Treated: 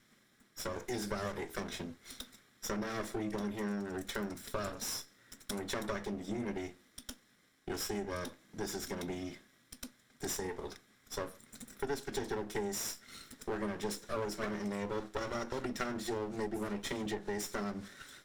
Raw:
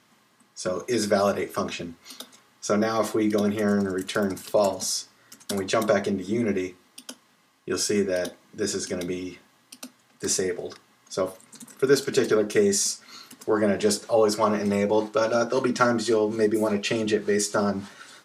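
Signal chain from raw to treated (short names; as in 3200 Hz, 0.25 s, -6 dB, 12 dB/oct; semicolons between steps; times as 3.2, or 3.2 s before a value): minimum comb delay 0.54 ms; compressor 3:1, threshold -32 dBFS, peak gain reduction 13 dB; gain -5 dB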